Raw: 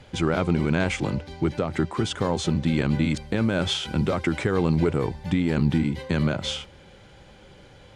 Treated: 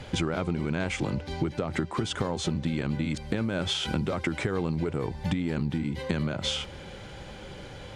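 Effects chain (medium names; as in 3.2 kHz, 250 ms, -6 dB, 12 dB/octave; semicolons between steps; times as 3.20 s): compression 10:1, threshold -32 dBFS, peak gain reduction 16 dB; trim +7 dB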